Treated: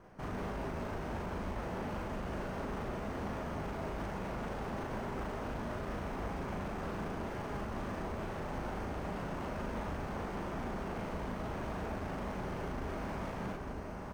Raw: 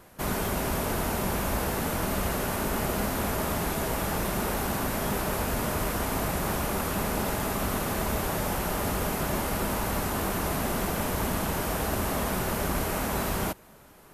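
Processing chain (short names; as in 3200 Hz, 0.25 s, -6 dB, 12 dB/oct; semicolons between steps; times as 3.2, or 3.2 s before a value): careless resampling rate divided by 6×, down filtered, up hold; high shelf 2500 Hz -11 dB; feedback echo 0.927 s, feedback 55%, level -13 dB; limiter -26.5 dBFS, peak gain reduction 9.5 dB; overloaded stage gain 35 dB; high shelf 7400 Hz -7 dB; on a send: loudspeakers at several distances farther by 13 m -1 dB, 63 m -10 dB, 92 m -10 dB; on the sum: gain -4 dB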